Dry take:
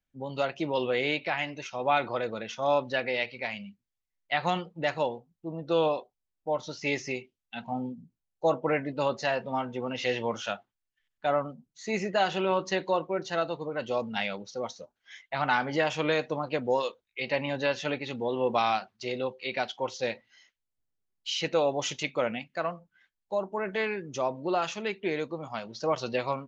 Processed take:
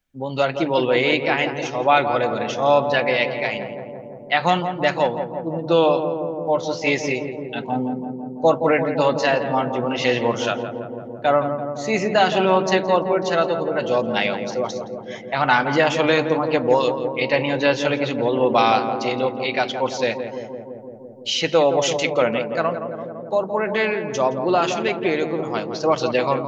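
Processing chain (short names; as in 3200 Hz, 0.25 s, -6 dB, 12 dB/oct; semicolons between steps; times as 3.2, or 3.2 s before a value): notches 50/100/150/200 Hz; on a send: darkening echo 0.169 s, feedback 84%, low-pass 1100 Hz, level -7 dB; on the sum: gain +9 dB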